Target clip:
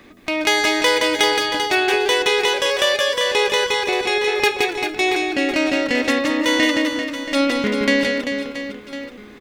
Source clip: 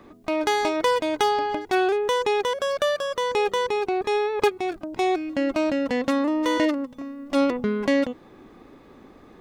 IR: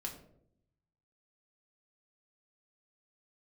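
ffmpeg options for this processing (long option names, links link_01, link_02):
-filter_complex "[0:a]highshelf=frequency=1500:width_type=q:width=1.5:gain=8,aecho=1:1:170|391|678.3|1052|1537:0.631|0.398|0.251|0.158|0.1,asplit=2[link_01][link_02];[1:a]atrim=start_sample=2205[link_03];[link_02][link_03]afir=irnorm=-1:irlink=0,volume=-10dB[link_04];[link_01][link_04]amix=inputs=2:normalize=0"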